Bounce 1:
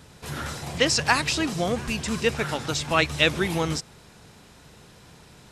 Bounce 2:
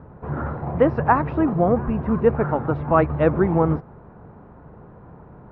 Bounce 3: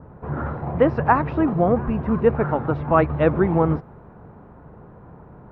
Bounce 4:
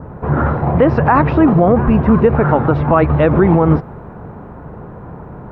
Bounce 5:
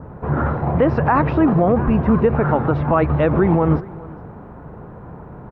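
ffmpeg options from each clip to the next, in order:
-af "lowpass=f=1200:w=0.5412,lowpass=f=1200:w=1.3066,volume=2.37"
-af "adynamicequalizer=threshold=0.0141:dfrequency=2300:dqfactor=0.7:tfrequency=2300:tqfactor=0.7:attack=5:release=100:ratio=0.375:range=2.5:mode=boostabove:tftype=highshelf"
-af "alimiter=level_in=4.47:limit=0.891:release=50:level=0:latency=1,volume=0.891"
-af "aecho=1:1:411:0.0891,volume=0.596"

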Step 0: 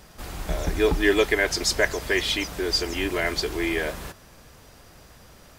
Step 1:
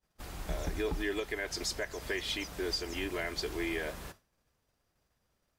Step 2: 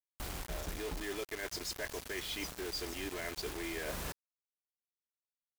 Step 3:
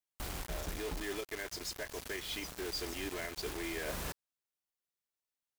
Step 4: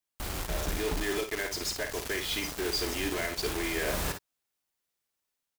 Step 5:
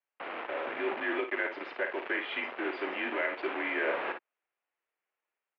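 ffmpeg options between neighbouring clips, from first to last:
-af "agate=range=0.0224:threshold=0.0158:ratio=3:detection=peak,alimiter=limit=0.168:level=0:latency=1:release=229,volume=0.398"
-af "areverse,acompressor=threshold=0.00794:ratio=20,areverse,acrusher=bits=7:mix=0:aa=0.000001,volume=1.88"
-af "alimiter=level_in=2.37:limit=0.0631:level=0:latency=1:release=218,volume=0.422,volume=1.19"
-filter_complex "[0:a]dynaudnorm=f=150:g=5:m=1.58,asplit=2[s0][s1];[s1]aecho=0:1:55|65:0.398|0.141[s2];[s0][s2]amix=inputs=2:normalize=0,volume=1.5"
-af "highpass=f=430:t=q:w=0.5412,highpass=f=430:t=q:w=1.307,lowpass=f=2700:t=q:w=0.5176,lowpass=f=2700:t=q:w=0.7071,lowpass=f=2700:t=q:w=1.932,afreqshift=-51,volume=1.41"

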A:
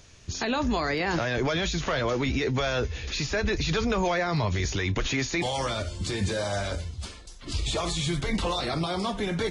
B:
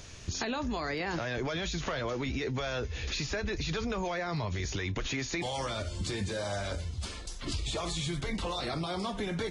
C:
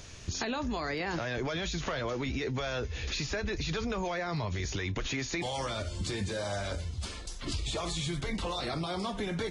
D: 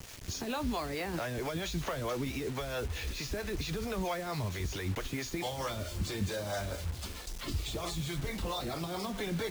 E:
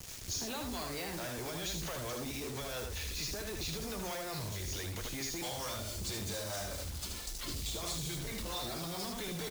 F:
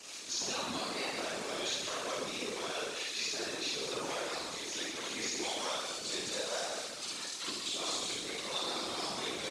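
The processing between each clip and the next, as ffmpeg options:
-af "acompressor=threshold=0.0126:ratio=4,volume=1.78"
-af anull
-filter_complex "[0:a]acrossover=split=290|910[s0][s1][s2];[s2]alimiter=level_in=2.51:limit=0.0631:level=0:latency=1:release=73,volume=0.398[s3];[s0][s1][s3]amix=inputs=3:normalize=0,acrossover=split=410[s4][s5];[s4]aeval=exprs='val(0)*(1-0.7/2+0.7/2*cos(2*PI*4.5*n/s))':c=same[s6];[s5]aeval=exprs='val(0)*(1-0.7/2-0.7/2*cos(2*PI*4.5*n/s))':c=same[s7];[s6][s7]amix=inputs=2:normalize=0,acrusher=bits=7:mix=0:aa=0.000001,volume=1.26"
-filter_complex "[0:a]aecho=1:1:77:0.596,acrossover=split=4100[s0][s1];[s0]asoftclip=type=hard:threshold=0.0188[s2];[s1]acontrast=82[s3];[s2][s3]amix=inputs=2:normalize=0,volume=0.668"
-af "highpass=f=270:w=0.5412,highpass=f=270:w=1.3066,equalizer=f=1200:t=q:w=4:g=4,equalizer=f=2600:t=q:w=4:g=4,equalizer=f=3900:t=q:w=4:g=4,lowpass=f=9000:w=0.5412,lowpass=f=9000:w=1.3066,aecho=1:1:52.48|183.7:1|0.562,afftfilt=real='hypot(re,im)*cos(2*PI*random(0))':imag='hypot(re,im)*sin(2*PI*random(1))':win_size=512:overlap=0.75,volume=1.78"

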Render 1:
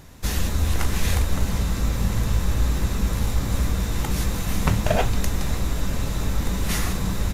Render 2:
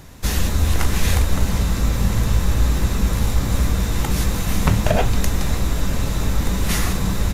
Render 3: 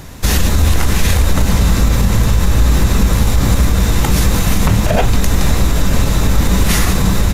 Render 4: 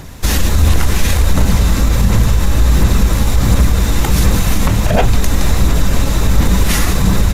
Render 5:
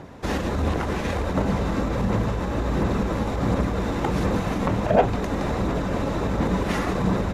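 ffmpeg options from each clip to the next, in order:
-filter_complex "[0:a]acrossover=split=480[s0][s1];[s1]acompressor=threshold=0.0794:ratio=6[s2];[s0][s2]amix=inputs=2:normalize=0,volume=1.58"
-af "alimiter=level_in=3.55:limit=0.891:release=50:level=0:latency=1,volume=0.794"
-af "aphaser=in_gain=1:out_gain=1:delay=3.7:decay=0.25:speed=1.4:type=sinusoidal,volume=0.891"
-af "bandpass=f=510:t=q:w=0.65:csg=0,volume=0.841"

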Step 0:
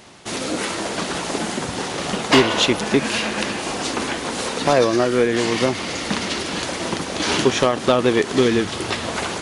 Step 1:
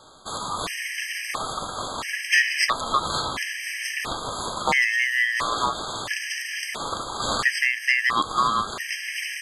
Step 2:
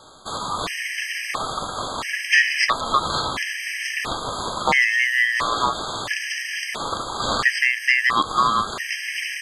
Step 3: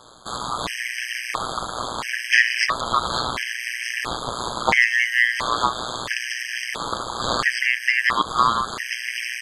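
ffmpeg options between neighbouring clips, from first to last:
-af "highpass=140,aeval=exprs='val(0)*sin(2*PI*1500*n/s)':c=same,afftfilt=real='re*gt(sin(2*PI*0.74*pts/sr)*(1-2*mod(floor(b*sr/1024/1600),2)),0)':imag='im*gt(sin(2*PI*0.74*pts/sr)*(1-2*mod(floor(b*sr/1024/1600),2)),0)':win_size=1024:overlap=0.75,volume=1.12"
-filter_complex "[0:a]acrossover=split=6100[s0][s1];[s1]acompressor=threshold=0.00708:ratio=4:attack=1:release=60[s2];[s0][s2]amix=inputs=2:normalize=0,volume=1.41"
-af "tremolo=f=120:d=0.919,volume=1.5"

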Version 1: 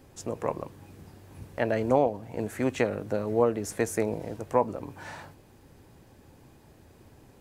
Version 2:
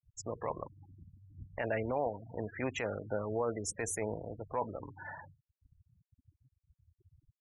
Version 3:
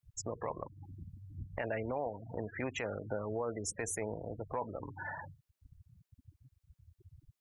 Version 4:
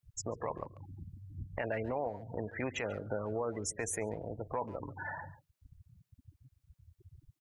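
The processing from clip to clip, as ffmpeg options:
-af "afftfilt=real='re*gte(hypot(re,im),0.0178)':imag='im*gte(hypot(re,im),0.0178)':win_size=1024:overlap=0.75,equalizer=f=250:w=0.41:g=-10.5,alimiter=level_in=1.12:limit=0.0631:level=0:latency=1:release=12,volume=0.891,volume=1.19"
-af "acompressor=threshold=0.00398:ratio=2,volume=2.24"
-filter_complex "[0:a]asplit=2[s0][s1];[s1]adelay=140,highpass=300,lowpass=3400,asoftclip=type=hard:threshold=0.0282,volume=0.158[s2];[s0][s2]amix=inputs=2:normalize=0,volume=1.12"

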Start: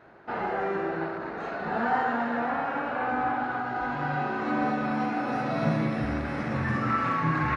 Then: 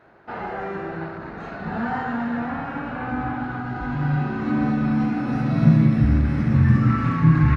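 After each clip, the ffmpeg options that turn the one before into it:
-af "asubboost=boost=8.5:cutoff=200"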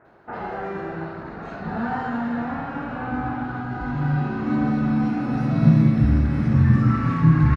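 -filter_complex "[0:a]acrossover=split=2200[s0][s1];[s1]adelay=50[s2];[s0][s2]amix=inputs=2:normalize=0"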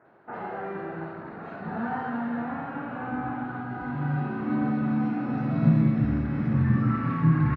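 -af "highpass=120,lowpass=2900,volume=0.631"

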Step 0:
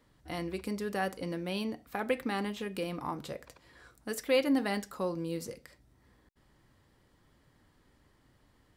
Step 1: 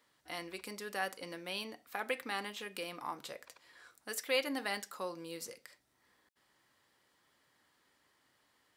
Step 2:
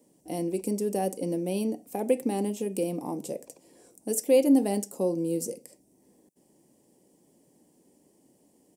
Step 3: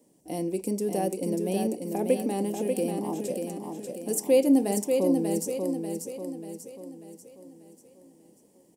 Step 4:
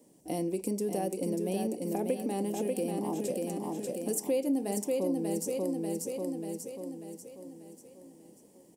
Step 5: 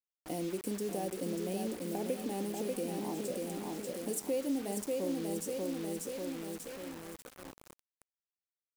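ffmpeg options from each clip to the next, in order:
-af "highpass=f=1200:p=1,volume=1.12"
-af "firequalizer=gain_entry='entry(110,0);entry(170,13);entry(310,12);entry(820,-2);entry(1300,-25);entry(2600,-11);entry(3800,-17);entry(5600,-2);entry(8500,6);entry(15000,-1)':delay=0.05:min_phase=1,volume=2.37"
-af "aecho=1:1:590|1180|1770|2360|2950|3540:0.562|0.264|0.124|0.0584|0.0274|0.0129"
-af "acompressor=threshold=0.0251:ratio=3,volume=1.26"
-af "acrusher=bits=6:mix=0:aa=0.000001,volume=0.596"

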